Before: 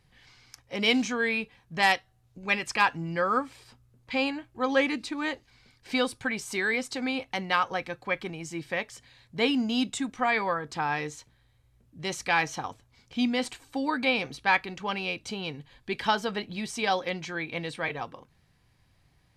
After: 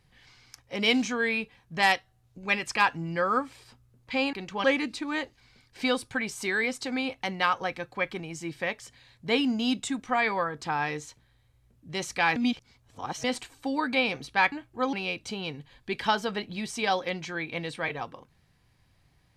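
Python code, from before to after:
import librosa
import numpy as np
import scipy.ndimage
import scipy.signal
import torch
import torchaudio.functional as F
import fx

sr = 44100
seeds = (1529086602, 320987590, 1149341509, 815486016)

y = fx.edit(x, sr, fx.swap(start_s=4.33, length_s=0.41, other_s=14.62, other_length_s=0.31),
    fx.reverse_span(start_s=12.46, length_s=0.88), tone=tone)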